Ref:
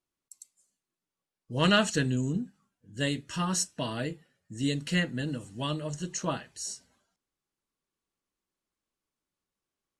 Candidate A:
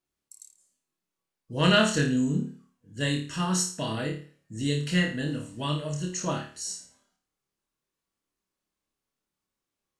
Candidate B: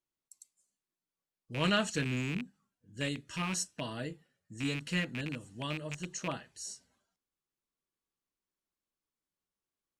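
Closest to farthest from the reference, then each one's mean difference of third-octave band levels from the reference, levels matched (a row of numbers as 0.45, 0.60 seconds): B, A; 2.5, 3.5 decibels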